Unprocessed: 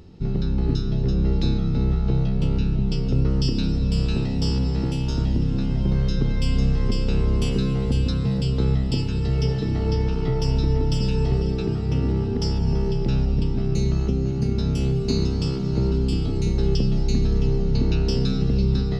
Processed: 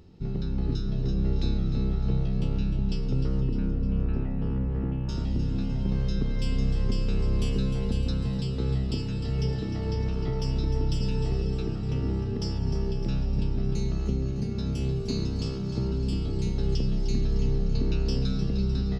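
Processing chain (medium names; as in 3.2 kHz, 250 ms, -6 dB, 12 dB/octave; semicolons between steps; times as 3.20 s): 3.40–5.09 s: low-pass 2 kHz 24 dB/octave; feedback delay 304 ms, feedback 54%, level -10 dB; trim -6.5 dB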